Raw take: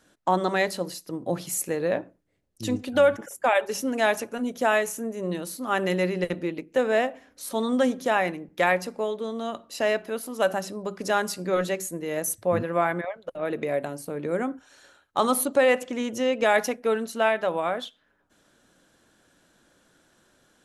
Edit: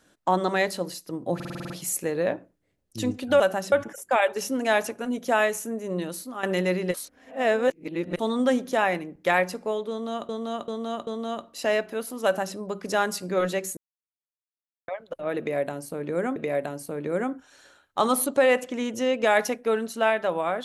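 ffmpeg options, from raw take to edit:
ffmpeg -i in.wav -filter_complex "[0:a]asplit=19[link_01][link_02][link_03][link_04][link_05][link_06][link_07][link_08][link_09][link_10][link_11][link_12][link_13][link_14][link_15][link_16][link_17][link_18][link_19];[link_01]atrim=end=1.402[link_20];[link_02]atrim=start=1.348:end=1.402[link_21];[link_03]atrim=start=1.348:end=1.402[link_22];[link_04]atrim=start=1.348:end=1.402[link_23];[link_05]atrim=start=1.348:end=1.402[link_24];[link_06]atrim=start=1.348:end=1.402[link_25];[link_07]atrim=start=1.348:end=1.402[link_26];[link_08]atrim=start=1.348:end=3.052[link_27];[link_09]atrim=start=10.398:end=10.722[link_28];[link_10]atrim=start=3.048:end=5.76,asetpts=PTS-STARTPTS,afade=type=out:start_time=2.442:duration=0.27:silence=0.237137[link_29];[link_11]atrim=start=5.76:end=6.272,asetpts=PTS-STARTPTS,afade=type=in:duration=0.004:curve=hsin:silence=0.237137[link_30];[link_12]atrim=start=6.268:end=7.522,asetpts=PTS-STARTPTS,areverse[link_31];[link_13]atrim=start=7.518:end=9.622[link_32];[link_14]atrim=start=9.228:end=9.622[link_33];[link_15]atrim=start=9.228:end=9.622[link_34];[link_16]atrim=start=9.228:end=11.93,asetpts=PTS-STARTPTS,afade=type=out:start_time=2.698:duration=0.004:curve=hsin[link_35];[link_17]atrim=start=11.93:end=13.04,asetpts=PTS-STARTPTS,volume=0[link_36];[link_18]atrim=start=13.04:end=14.522,asetpts=PTS-STARTPTS,afade=type=in:duration=0.004:curve=hsin[link_37];[link_19]atrim=start=13.548[link_38];[link_20][link_21]acrossfade=duration=0.004:curve1=hsin:curve2=hsin[link_39];[link_39][link_22]acrossfade=duration=0.004:curve1=hsin:curve2=hsin[link_40];[link_40][link_23]acrossfade=duration=0.004:curve1=hsin:curve2=hsin[link_41];[link_41][link_24]acrossfade=duration=0.004:curve1=hsin:curve2=hsin[link_42];[link_42][link_25]acrossfade=duration=0.004:curve1=hsin:curve2=hsin[link_43];[link_43][link_26]acrossfade=duration=0.004:curve1=hsin:curve2=hsin[link_44];[link_44][link_27]acrossfade=duration=0.004:curve1=hsin:curve2=hsin[link_45];[link_45][link_28]acrossfade=duration=0.004:curve1=hsin:curve2=hsin[link_46];[link_29][link_30]concat=n=2:v=0:a=1[link_47];[link_46][link_47]acrossfade=duration=0.004:curve1=hsin:curve2=hsin[link_48];[link_48][link_31]acrossfade=duration=0.004:curve1=hsin:curve2=hsin[link_49];[link_49][link_32]acrossfade=duration=0.004:curve1=hsin:curve2=hsin[link_50];[link_50][link_33]acrossfade=duration=0.004:curve1=hsin:curve2=hsin[link_51];[link_51][link_34]acrossfade=duration=0.004:curve1=hsin:curve2=hsin[link_52];[link_35][link_36][link_37]concat=n=3:v=0:a=1[link_53];[link_52][link_53]acrossfade=duration=0.004:curve1=hsin:curve2=hsin[link_54];[link_54][link_38]acrossfade=duration=0.004:curve1=hsin:curve2=hsin" out.wav

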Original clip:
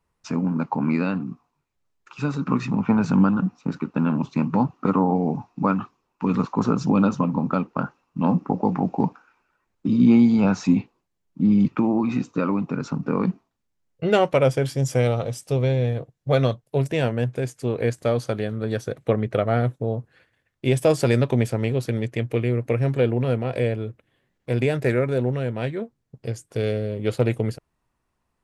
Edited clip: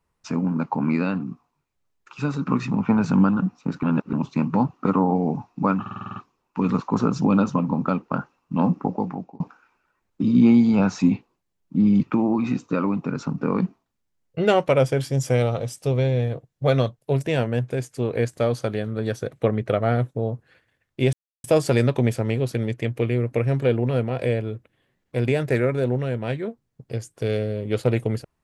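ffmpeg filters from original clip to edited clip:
ffmpeg -i in.wav -filter_complex "[0:a]asplit=12[link_01][link_02][link_03][link_04][link_05][link_06][link_07][link_08][link_09][link_10][link_11][link_12];[link_01]atrim=end=3.832[link_13];[link_02]atrim=start=3.828:end=4.132,asetpts=PTS-STARTPTS,areverse[link_14];[link_03]atrim=start=4.128:end=5.862[link_15];[link_04]atrim=start=5.808:end=5.862[link_16];[link_05]atrim=start=5.808:end=5.862[link_17];[link_06]atrim=start=5.808:end=5.862[link_18];[link_07]atrim=start=5.808:end=5.862[link_19];[link_08]atrim=start=5.808:end=5.862[link_20];[link_09]atrim=start=5.808:end=5.862[link_21];[link_10]atrim=start=5.808:end=9.05,asetpts=PTS-STARTPTS,afade=type=out:start_time=2.632:duration=0.61[link_22];[link_11]atrim=start=9.05:end=20.78,asetpts=PTS-STARTPTS,afade=type=in:duration=0.004:curve=hsin,afade=type=out:start_time=11.726:duration=0.004:curve=hsin,apad=pad_dur=0.31[link_23];[link_12]atrim=start=20.78,asetpts=PTS-STARTPTS,afade=type=in:duration=0.004:curve=hsin[link_24];[link_13][link_14]acrossfade=duration=0.004:curve1=hsin:curve2=hsin[link_25];[link_25][link_15]acrossfade=duration=0.004:curve1=hsin:curve2=hsin[link_26];[link_26][link_16]acrossfade=duration=0.004:curve1=hsin:curve2=hsin[link_27];[link_27][link_17]acrossfade=duration=0.004:curve1=hsin:curve2=hsin[link_28];[link_28][link_18]acrossfade=duration=0.004:curve1=hsin:curve2=hsin[link_29];[link_29][link_19]acrossfade=duration=0.004:curve1=hsin:curve2=hsin[link_30];[link_30][link_20]acrossfade=duration=0.004:curve1=hsin:curve2=hsin[link_31];[link_31][link_21]acrossfade=duration=0.004:curve1=hsin:curve2=hsin[link_32];[link_22][link_23][link_24]concat=n=3:v=0:a=1[link_33];[link_32][link_33]acrossfade=duration=0.004:curve1=hsin:curve2=hsin" out.wav

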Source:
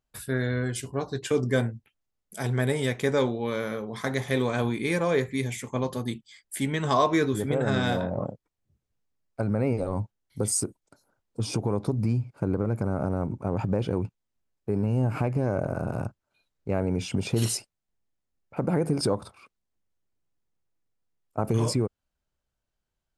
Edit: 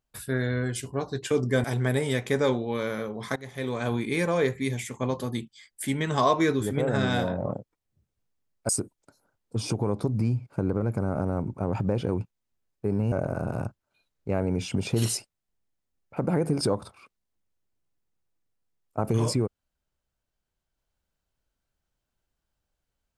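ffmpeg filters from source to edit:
ffmpeg -i in.wav -filter_complex "[0:a]asplit=5[link_01][link_02][link_03][link_04][link_05];[link_01]atrim=end=1.642[link_06];[link_02]atrim=start=2.368:end=4.09,asetpts=PTS-STARTPTS,afade=type=out:start_time=1.718:duration=0.004:curve=hsin:silence=0.112202[link_07];[link_03]atrim=start=4.09:end=9.422,asetpts=PTS-STARTPTS,afade=type=in:duration=0.64:silence=0.112202[link_08];[link_04]atrim=start=10.528:end=14.962[link_09];[link_05]atrim=start=15.518[link_10];[link_07][link_08]concat=n=2:v=0:a=1[link_11];[link_06][link_11]acrossfade=duration=0.004:curve1=hsin:curve2=hsin[link_12];[link_12][link_09]acrossfade=duration=0.004:curve1=hsin:curve2=hsin[link_13];[link_13][link_10]acrossfade=duration=0.004:curve1=hsin:curve2=hsin" out.wav

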